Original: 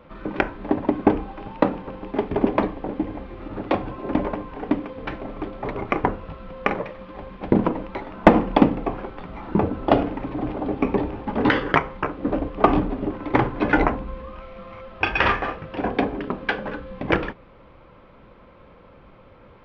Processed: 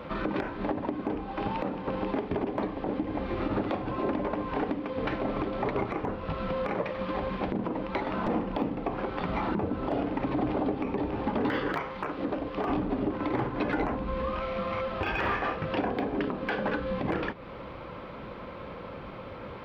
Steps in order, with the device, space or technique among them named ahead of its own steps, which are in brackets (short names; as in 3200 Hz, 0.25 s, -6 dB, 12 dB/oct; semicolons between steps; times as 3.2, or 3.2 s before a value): broadcast voice chain (HPF 82 Hz 6 dB/oct; de-esser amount 100%; compressor 4:1, threshold -35 dBFS, peak gain reduction 20.5 dB; bell 4400 Hz +3 dB 0.61 oct; limiter -28 dBFS, peak gain reduction 10 dB); 11.73–12.69 tilt +1.5 dB/oct; gain +9 dB